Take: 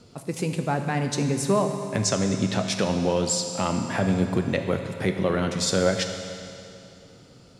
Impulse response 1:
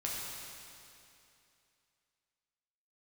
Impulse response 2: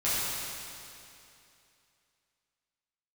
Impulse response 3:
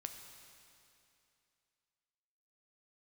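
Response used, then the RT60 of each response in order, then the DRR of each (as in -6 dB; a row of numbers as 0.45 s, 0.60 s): 3; 2.7 s, 2.7 s, 2.7 s; -5.0 dB, -12.5 dB, 5.0 dB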